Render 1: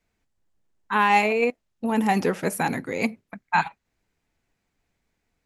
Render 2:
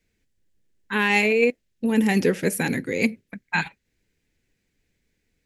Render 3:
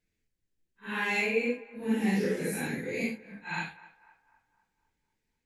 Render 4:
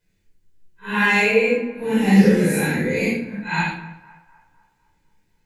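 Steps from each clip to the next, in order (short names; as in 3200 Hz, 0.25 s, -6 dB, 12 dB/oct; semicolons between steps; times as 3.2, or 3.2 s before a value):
band shelf 930 Hz -12 dB 1.3 oct; gain +3.5 dB
phase scrambler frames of 0.2 s; narrowing echo 0.253 s, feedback 51%, band-pass 990 Hz, level -17 dB; gain -8.5 dB
shoebox room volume 700 m³, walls furnished, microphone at 4.9 m; gain +5 dB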